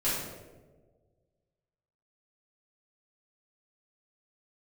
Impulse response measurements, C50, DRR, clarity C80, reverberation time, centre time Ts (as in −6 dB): 0.0 dB, −11.0 dB, 3.0 dB, 1.4 s, 79 ms